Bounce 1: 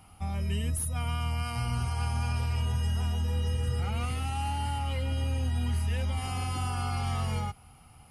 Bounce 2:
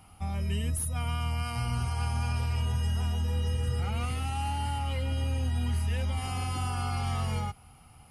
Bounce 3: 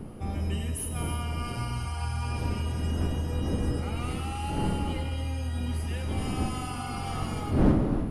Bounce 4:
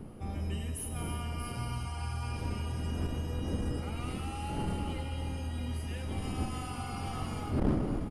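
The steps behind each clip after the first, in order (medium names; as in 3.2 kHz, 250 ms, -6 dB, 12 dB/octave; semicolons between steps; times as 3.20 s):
no audible change
wind noise 240 Hz -31 dBFS; gated-style reverb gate 380 ms flat, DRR 4.5 dB; trim -2 dB
delay 634 ms -10.5 dB; transformer saturation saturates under 110 Hz; trim -5 dB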